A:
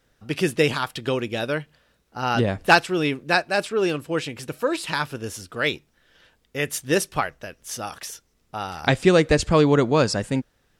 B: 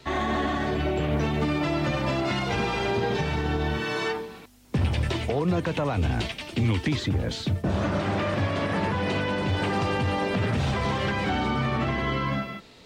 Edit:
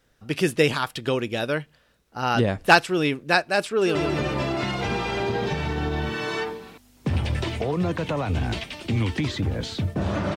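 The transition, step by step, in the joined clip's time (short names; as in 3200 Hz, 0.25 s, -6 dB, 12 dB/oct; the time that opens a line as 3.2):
A
3.67–3.95 echo throw 0.14 s, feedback 70%, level -7 dB
3.95 switch to B from 1.63 s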